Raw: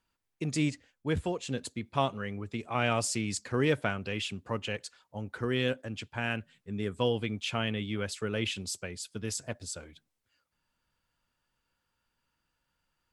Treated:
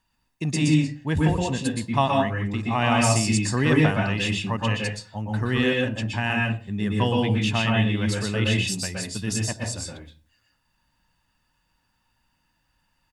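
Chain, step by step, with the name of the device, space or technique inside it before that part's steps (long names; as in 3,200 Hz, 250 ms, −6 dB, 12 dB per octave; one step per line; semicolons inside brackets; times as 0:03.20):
microphone above a desk (comb filter 1.1 ms, depth 54%; convolution reverb RT60 0.35 s, pre-delay 115 ms, DRR −1 dB)
level +5 dB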